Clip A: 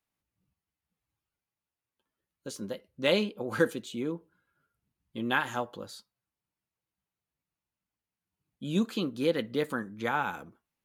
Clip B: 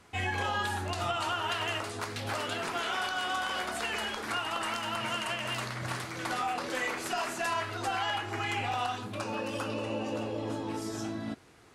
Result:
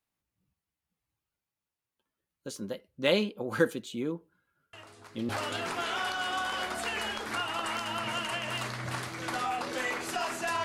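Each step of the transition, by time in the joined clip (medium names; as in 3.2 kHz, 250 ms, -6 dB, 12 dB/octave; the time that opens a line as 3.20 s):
clip A
4.73 s: add clip B from 1.70 s 0.56 s -15.5 dB
5.29 s: go over to clip B from 2.26 s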